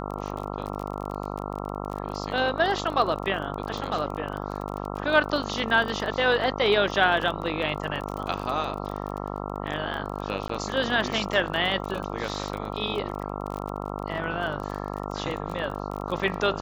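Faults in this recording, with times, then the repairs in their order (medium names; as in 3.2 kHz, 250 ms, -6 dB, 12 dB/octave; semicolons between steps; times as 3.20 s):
buzz 50 Hz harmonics 27 -33 dBFS
crackle 27 per s -31 dBFS
10.48–10.49 s: dropout 14 ms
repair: de-click; de-hum 50 Hz, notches 27; interpolate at 10.48 s, 14 ms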